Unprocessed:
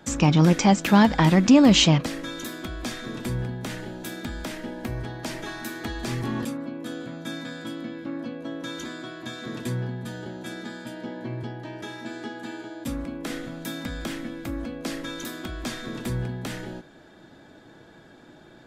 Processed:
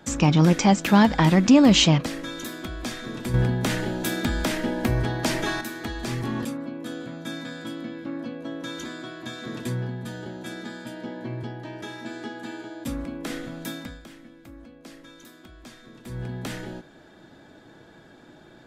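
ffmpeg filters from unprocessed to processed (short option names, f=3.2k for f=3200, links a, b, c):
-filter_complex "[0:a]asplit=5[a][b][c][d][e];[a]atrim=end=3.342[f];[b]atrim=start=3.338:end=5.612,asetpts=PTS-STARTPTS,volume=8dB[g];[c]atrim=start=5.608:end=14.02,asetpts=PTS-STARTPTS,afade=t=out:st=8.072:d=0.34:silence=0.211349[h];[d]atrim=start=14.02:end=16.03,asetpts=PTS-STARTPTS,volume=-13.5dB[i];[e]atrim=start=16.03,asetpts=PTS-STARTPTS,afade=t=in:d=0.34:silence=0.211349[j];[f][g]acrossfade=d=0.004:c1=hsin:c2=hsin[k];[h][i][j]concat=n=3:v=0:a=1[l];[k][l]acrossfade=d=0.004:c1=hsin:c2=hsin"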